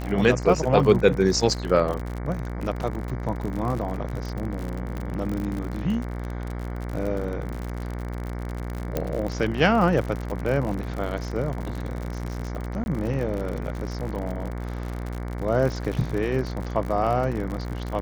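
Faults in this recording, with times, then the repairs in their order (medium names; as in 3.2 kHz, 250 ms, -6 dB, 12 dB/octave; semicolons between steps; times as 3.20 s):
buzz 60 Hz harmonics 38 -31 dBFS
crackle 58 per s -29 dBFS
4.97 s: pop -20 dBFS
8.97 s: pop -11 dBFS
12.84–12.86 s: dropout 21 ms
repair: de-click; de-hum 60 Hz, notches 38; interpolate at 12.84 s, 21 ms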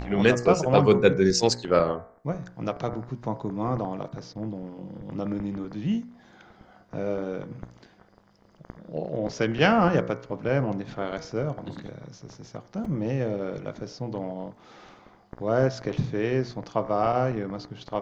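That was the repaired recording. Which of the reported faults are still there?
4.97 s: pop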